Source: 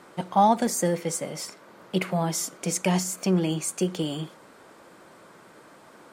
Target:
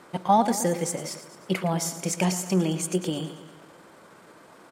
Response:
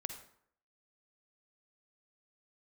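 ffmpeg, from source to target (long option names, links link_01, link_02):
-af "aecho=1:1:144|288|432|576|720|864:0.237|0.133|0.0744|0.0416|0.0233|0.0131,atempo=1.3"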